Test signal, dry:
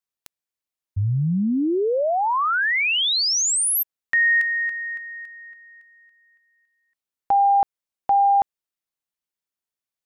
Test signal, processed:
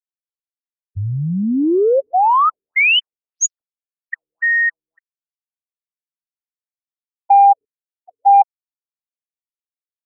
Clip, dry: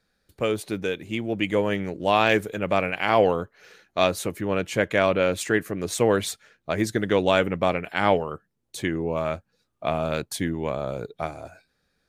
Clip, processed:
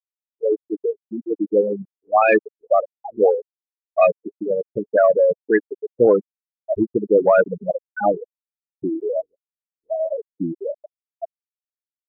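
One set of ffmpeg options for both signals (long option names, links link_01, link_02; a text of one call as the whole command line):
ffmpeg -i in.wav -af "afftfilt=real='re*gte(hypot(re,im),0.316)':imag='im*gte(hypot(re,im),0.316)':win_size=1024:overlap=0.75,bass=frequency=250:gain=-9,treble=frequency=4000:gain=0,acontrast=34,afftfilt=real='re*lt(b*sr/1024,410*pow(6900/410,0.5+0.5*sin(2*PI*1.8*pts/sr)))':imag='im*lt(b*sr/1024,410*pow(6900/410,0.5+0.5*sin(2*PI*1.8*pts/sr)))':win_size=1024:overlap=0.75,volume=3.5dB" out.wav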